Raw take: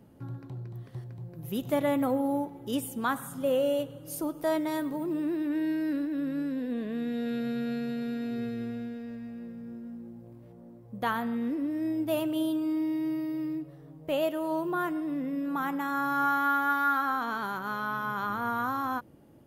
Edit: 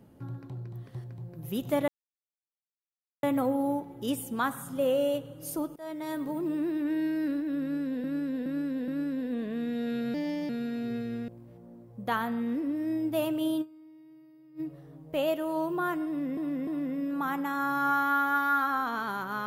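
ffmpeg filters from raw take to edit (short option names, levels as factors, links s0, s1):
-filter_complex "[0:a]asplit=13[s0][s1][s2][s3][s4][s5][s6][s7][s8][s9][s10][s11][s12];[s0]atrim=end=1.88,asetpts=PTS-STARTPTS,afade=t=out:st=1.876:d=0.004:c=hsin,apad=pad_dur=1.35[s13];[s1]atrim=start=1.88:end=4.41,asetpts=PTS-STARTPTS,afade=t=in:d=0.004:c=hsin,afade=t=out:st=2.526:d=0.004:c=hsin:silence=0.0668344[s14];[s2]atrim=start=4.41:end=6.692,asetpts=PTS-STARTPTS,afade=t=in:d=0.53:silence=0.0668344[s15];[s3]atrim=start=6.268:end=6.692[s16];[s4]atrim=start=6.268:end=6.692[s17];[s5]atrim=start=6.268:end=7.534[s18];[s6]atrim=start=7.53:end=7.97,asetpts=PTS-STARTPTS,asetrate=55125,aresample=44100,atrim=end_sample=15523,asetpts=PTS-STARTPTS[s19];[s7]atrim=start=7.966:end=8.762[s20];[s8]atrim=start=10.228:end=12.75,asetpts=PTS-STARTPTS,afade=t=out:st=2.332:d=0.19:c=exp:silence=0.0707946[s21];[s9]atrim=start=12.75:end=13.36,asetpts=PTS-STARTPTS,volume=0.0708[s22];[s10]atrim=start=13.36:end=15.322,asetpts=PTS-STARTPTS,afade=t=in:d=0.19:c=exp:silence=0.0707946[s23];[s11]atrim=start=15.018:end=15.322[s24];[s12]atrim=start=15.018[s25];[s13][s14][s15]concat=n=3:v=0:a=1[s26];[s26][s16]acrossfade=d=0.004:c1=hsin:c2=hsin[s27];[s27][s17]acrossfade=d=0.004:c1=hsin:c2=hsin[s28];[s28][s18]acrossfade=d=0.004:c1=hsin:c2=hsin[s29];[s29][s19]acrossfade=d=0.004:c1=hsin:c2=hsin[s30];[s30][s20]acrossfade=d=0.004:c1=hsin:c2=hsin[s31];[s21][s22][s23]concat=n=3:v=0:a=1[s32];[s31][s32]acrossfade=d=0.004:c1=hsin:c2=hsin[s33];[s33][s24]acrossfade=d=0.004:c1=hsin:c2=hsin[s34];[s34][s25]acrossfade=d=0.004:c1=hsin:c2=hsin"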